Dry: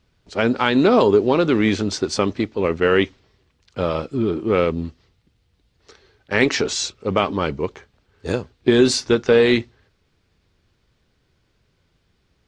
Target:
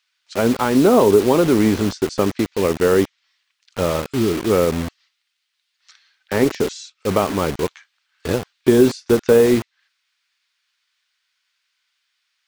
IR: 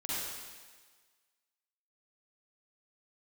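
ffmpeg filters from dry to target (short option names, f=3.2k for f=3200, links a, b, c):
-filter_complex "[0:a]asettb=1/sr,asplit=3[a][b][c];[a]atrim=end=1.344[d];[b]atrim=start=1.34:end=1.91,asetpts=PTS-STARTPTS,afade=t=in:d=0.004:c=qsin,afade=t=out:st=0.566:d=0.004:c=qsin,aeval=exprs='val(0)+0.5*0.0251*sgn(val(0))':c=same[e];[c]atrim=start=1.906[f];[d][e]acrossfade=d=0.004:c1=hsin:c2=qsin[g];[g][f]acrossfade=d=0.004:c1=qsin:c2=hsin,acrossover=split=1300[h][i];[h]acrusher=bits=4:mix=0:aa=0.000001[j];[i]acompressor=threshold=-35dB:ratio=16[k];[j][k]amix=inputs=2:normalize=0,volume=2dB"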